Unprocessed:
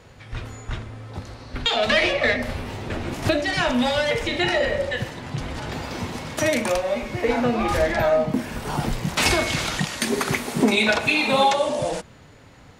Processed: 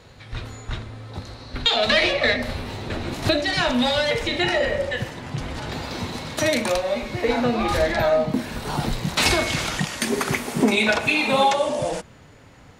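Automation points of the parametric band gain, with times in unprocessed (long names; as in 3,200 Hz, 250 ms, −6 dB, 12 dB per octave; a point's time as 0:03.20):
parametric band 4,000 Hz 0.26 octaves
0:04.05 +8.5 dB
0:04.56 −0.5 dB
0:05.34 −0.5 dB
0:05.87 +8.5 dB
0:09.05 +8.5 dB
0:09.71 −2.5 dB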